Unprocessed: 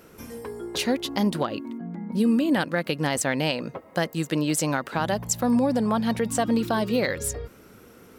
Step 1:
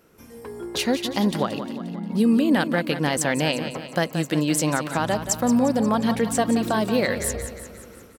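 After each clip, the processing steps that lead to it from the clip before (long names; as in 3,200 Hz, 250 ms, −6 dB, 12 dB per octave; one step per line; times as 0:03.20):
automatic gain control gain up to 11.5 dB
on a send: repeating echo 177 ms, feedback 54%, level −10.5 dB
on the sum: level −7.5 dB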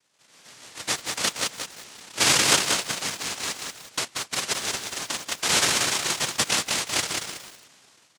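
harmonic generator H 2 −14 dB, 3 −14 dB, 4 −15 dB, 7 −21 dB, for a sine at −8 dBFS
cochlear-implant simulation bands 1
feedback echo at a low word length 185 ms, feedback 35%, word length 7 bits, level −3.5 dB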